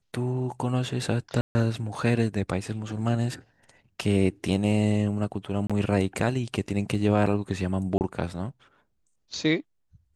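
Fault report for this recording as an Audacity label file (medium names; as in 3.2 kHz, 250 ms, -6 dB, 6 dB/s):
1.410000	1.550000	dropout 140 ms
5.670000	5.700000	dropout 26 ms
6.950000	6.950000	dropout 2.3 ms
7.980000	8.010000	dropout 29 ms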